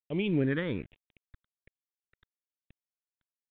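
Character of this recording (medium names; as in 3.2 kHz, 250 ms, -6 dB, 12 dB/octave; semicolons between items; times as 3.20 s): a quantiser's noise floor 8-bit, dither none; phasing stages 6, 1.2 Hz, lowest notch 680–1400 Hz; µ-law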